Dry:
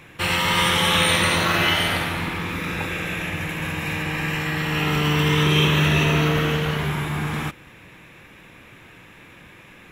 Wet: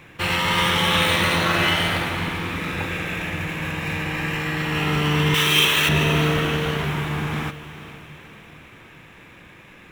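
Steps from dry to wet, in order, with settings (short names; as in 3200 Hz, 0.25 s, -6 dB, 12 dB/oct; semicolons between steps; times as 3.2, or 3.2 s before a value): median filter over 5 samples; 5.34–5.89 tilt +3.5 dB/oct; diffused feedback echo 0.48 s, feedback 49%, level -14.5 dB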